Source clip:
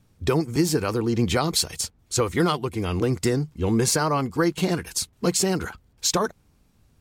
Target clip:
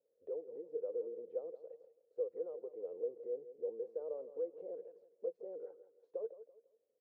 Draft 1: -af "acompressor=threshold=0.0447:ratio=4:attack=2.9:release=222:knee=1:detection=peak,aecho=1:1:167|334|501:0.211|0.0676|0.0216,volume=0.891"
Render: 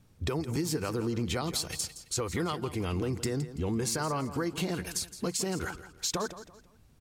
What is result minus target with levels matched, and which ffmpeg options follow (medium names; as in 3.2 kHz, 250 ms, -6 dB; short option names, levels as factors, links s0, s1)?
500 Hz band -7.0 dB
-af "acompressor=threshold=0.0447:ratio=4:attack=2.9:release=222:knee=1:detection=peak,asuperpass=centerf=500:order=4:qfactor=4.5,aecho=1:1:167|334|501:0.211|0.0676|0.0216,volume=0.891"